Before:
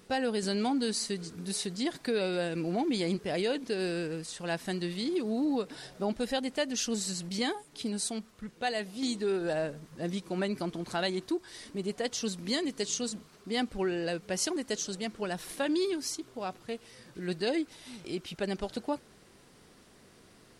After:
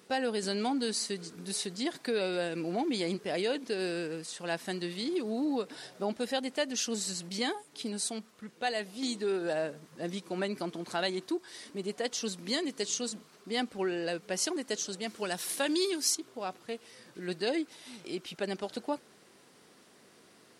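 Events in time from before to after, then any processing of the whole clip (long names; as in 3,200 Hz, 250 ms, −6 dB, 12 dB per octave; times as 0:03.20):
0:15.07–0:16.15: high-shelf EQ 3,300 Hz +9.5 dB
whole clip: Bessel high-pass filter 230 Hz, order 2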